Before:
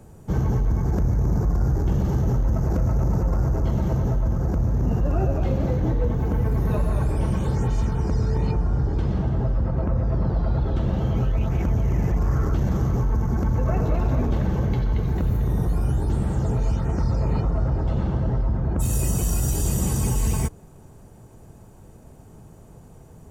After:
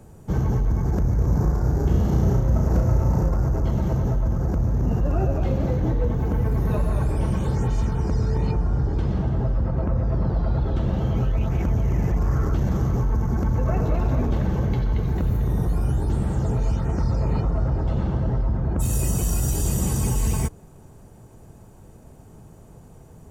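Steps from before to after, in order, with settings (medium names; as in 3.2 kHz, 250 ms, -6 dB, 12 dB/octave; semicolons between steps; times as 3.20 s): 1.15–3.29 s: flutter echo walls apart 5.8 m, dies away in 0.49 s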